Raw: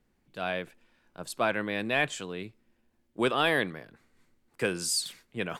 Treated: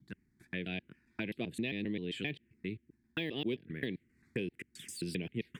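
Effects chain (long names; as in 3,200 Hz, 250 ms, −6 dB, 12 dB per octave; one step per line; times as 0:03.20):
slices reordered back to front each 132 ms, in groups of 3
low-pass filter 2,300 Hz 6 dB per octave
de-essing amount 90%
high-pass filter 61 Hz
flat-topped bell 860 Hz −15 dB
downward compressor 6 to 1, threshold −35 dBFS, peak gain reduction 10.5 dB
phaser swept by the level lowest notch 440 Hz, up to 1,400 Hz, full sweep at −36 dBFS
level +4 dB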